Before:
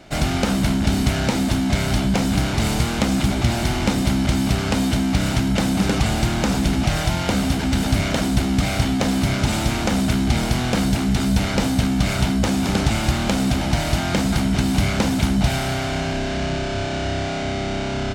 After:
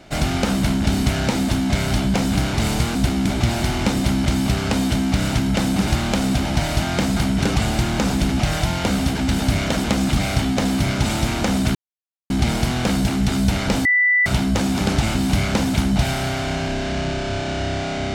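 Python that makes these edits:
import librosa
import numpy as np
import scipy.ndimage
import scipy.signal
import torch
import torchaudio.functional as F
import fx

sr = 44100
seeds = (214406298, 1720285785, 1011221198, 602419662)

y = fx.edit(x, sr, fx.swap(start_s=2.95, length_s=0.32, other_s=8.28, other_length_s=0.31),
    fx.insert_silence(at_s=10.18, length_s=0.55),
    fx.bleep(start_s=11.73, length_s=0.41, hz=1980.0, db=-13.0),
    fx.move(start_s=13.03, length_s=1.57, to_s=5.88), tone=tone)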